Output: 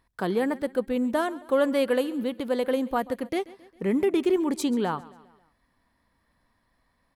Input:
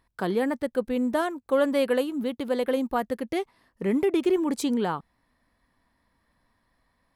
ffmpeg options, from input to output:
-af "aecho=1:1:135|270|405|540:0.1|0.051|0.026|0.0133"

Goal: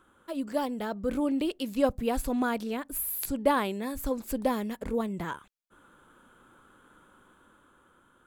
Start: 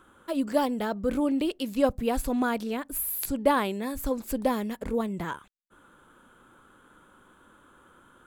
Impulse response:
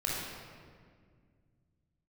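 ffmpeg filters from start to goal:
-af "dynaudnorm=f=110:g=17:m=1.58,volume=0.531"

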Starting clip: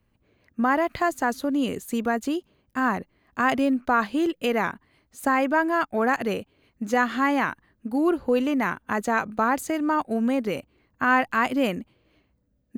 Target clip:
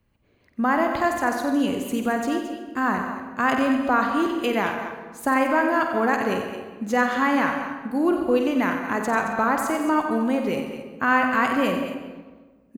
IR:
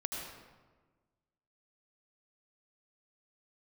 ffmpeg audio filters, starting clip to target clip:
-filter_complex "[0:a]aecho=1:1:91|222:0.376|0.266,asplit=2[s0][s1];[1:a]atrim=start_sample=2205,adelay=49[s2];[s1][s2]afir=irnorm=-1:irlink=0,volume=0.398[s3];[s0][s3]amix=inputs=2:normalize=0"

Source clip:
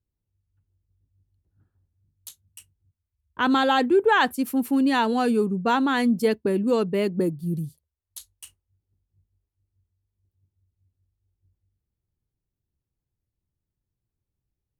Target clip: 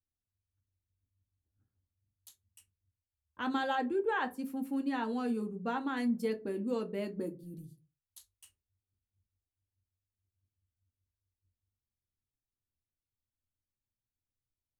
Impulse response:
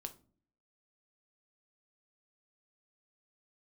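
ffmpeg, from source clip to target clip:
-filter_complex "[0:a]asettb=1/sr,asplit=3[s0][s1][s2];[s0]atrim=end=3.754[s3];[s1]atrim=start=3.75:end=5.97,asetpts=PTS-STARTPTS,afade=t=in:d=0.004:c=qsin,afade=t=out:st=2.216:d=0.004:c=qsin,acrossover=split=2800[s4][s5];[s5]acompressor=threshold=0.0112:ratio=4:attack=1:release=60[s6];[s4][s6]amix=inputs=2:normalize=0[s7];[s2]atrim=start=5.966[s8];[s3][s7]acrossfade=d=0.004:c1=hsin:c2=qsin[s9];[s9][s8]acrossfade=d=0.004:c1=qsin:c2=hsin[s10];[1:a]atrim=start_sample=2205,asetrate=74970,aresample=44100[s11];[s10][s11]afir=irnorm=-1:irlink=0,volume=0.531"

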